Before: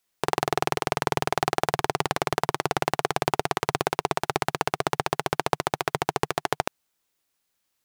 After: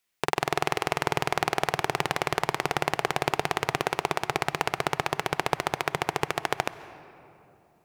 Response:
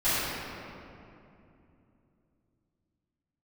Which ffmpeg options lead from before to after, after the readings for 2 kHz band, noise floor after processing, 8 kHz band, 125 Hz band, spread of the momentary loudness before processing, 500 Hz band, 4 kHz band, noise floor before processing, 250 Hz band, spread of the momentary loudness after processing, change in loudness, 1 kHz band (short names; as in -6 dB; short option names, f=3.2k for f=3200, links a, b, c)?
+1.5 dB, -63 dBFS, -2.0 dB, -2.0 dB, 2 LU, -2.0 dB, 0.0 dB, -77 dBFS, -2.0 dB, 2 LU, -1.0 dB, -2.0 dB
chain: -filter_complex "[0:a]equalizer=f=2.3k:t=o:w=0.95:g=5.5,asplit=2[a][b];[1:a]atrim=start_sample=2205,adelay=125[c];[b][c]afir=irnorm=-1:irlink=0,volume=-30dB[d];[a][d]amix=inputs=2:normalize=0,volume=-2.5dB"